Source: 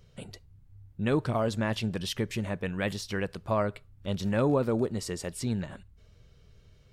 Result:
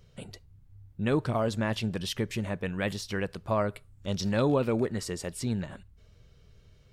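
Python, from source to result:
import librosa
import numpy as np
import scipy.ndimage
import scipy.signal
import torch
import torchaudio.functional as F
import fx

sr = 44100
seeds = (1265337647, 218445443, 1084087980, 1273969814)

y = fx.peak_eq(x, sr, hz=fx.line((3.68, 12000.0), (5.03, 1500.0)), db=12.0, octaves=0.49, at=(3.68, 5.03), fade=0.02)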